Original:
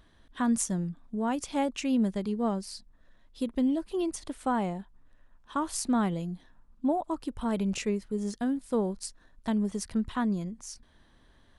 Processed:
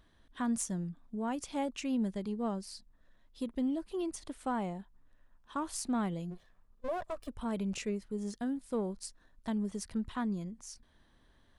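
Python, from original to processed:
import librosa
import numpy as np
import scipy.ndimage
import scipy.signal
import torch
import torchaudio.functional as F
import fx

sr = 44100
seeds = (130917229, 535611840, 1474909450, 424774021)

p1 = fx.lower_of_two(x, sr, delay_ms=1.7, at=(6.3, 7.27), fade=0.02)
p2 = 10.0 ** (-26.5 / 20.0) * np.tanh(p1 / 10.0 ** (-26.5 / 20.0))
p3 = p1 + (p2 * 10.0 ** (-8.0 / 20.0))
y = p3 * 10.0 ** (-8.0 / 20.0)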